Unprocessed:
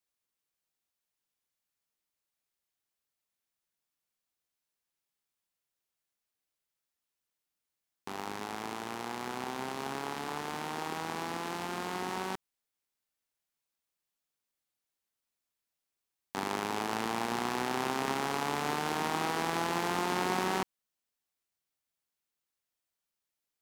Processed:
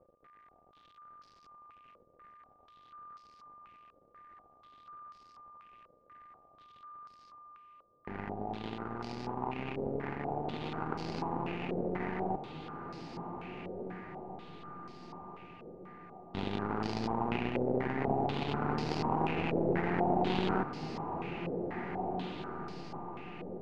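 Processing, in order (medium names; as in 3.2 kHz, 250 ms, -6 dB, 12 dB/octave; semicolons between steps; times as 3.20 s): median filter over 41 samples; reverse; upward compressor, threshold -47 dBFS; reverse; whistle 1.2 kHz -66 dBFS; echo that smears into a reverb 1767 ms, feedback 47%, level -7 dB; step-sequenced low-pass 4.1 Hz 530–4900 Hz; trim +4.5 dB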